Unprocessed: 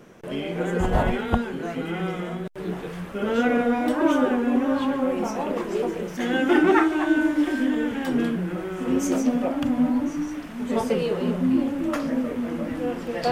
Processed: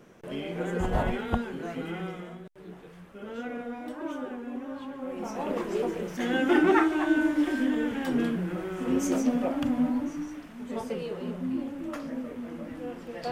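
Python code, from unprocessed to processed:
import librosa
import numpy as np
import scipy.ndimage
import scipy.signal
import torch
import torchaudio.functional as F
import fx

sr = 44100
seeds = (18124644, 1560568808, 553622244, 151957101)

y = fx.gain(x, sr, db=fx.line((1.88, -5.5), (2.58, -15.0), (4.94, -15.0), (5.5, -3.5), (9.65, -3.5), (10.67, -10.0)))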